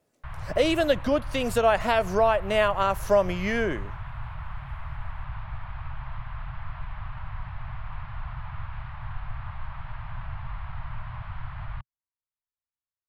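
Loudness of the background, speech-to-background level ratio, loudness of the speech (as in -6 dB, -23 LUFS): -39.0 LUFS, 14.5 dB, -24.5 LUFS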